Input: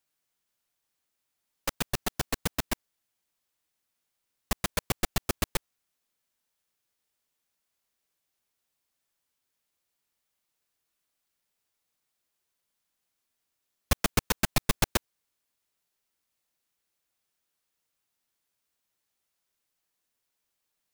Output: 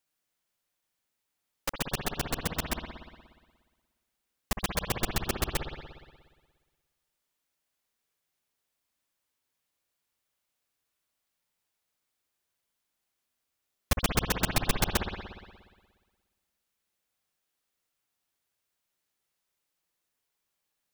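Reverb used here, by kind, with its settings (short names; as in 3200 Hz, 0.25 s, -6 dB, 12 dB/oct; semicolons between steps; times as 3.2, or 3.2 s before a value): spring tank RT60 1.5 s, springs 59 ms, chirp 30 ms, DRR 3.5 dB; gain -1.5 dB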